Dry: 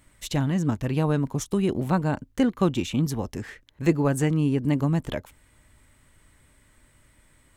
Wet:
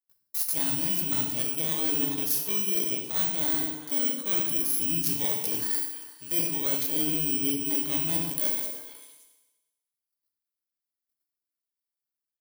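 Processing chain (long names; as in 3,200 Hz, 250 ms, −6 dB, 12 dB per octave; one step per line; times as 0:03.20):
samples in bit-reversed order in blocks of 16 samples
noise gate −50 dBFS, range −43 dB
spectral tilt +4 dB per octave
notch filter 2,500 Hz, Q 22
tempo change 0.61×
feedback delay network reverb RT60 1.1 s, low-frequency decay 0.9×, high-frequency decay 1×, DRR 3 dB
reversed playback
downward compressor 10 to 1, threshold −23 dBFS, peak gain reduction 15.5 dB
reversed playback
mains-hum notches 50/100/150 Hz
on a send: echo through a band-pass that steps 114 ms, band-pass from 170 Hz, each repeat 1.4 octaves, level −3.5 dB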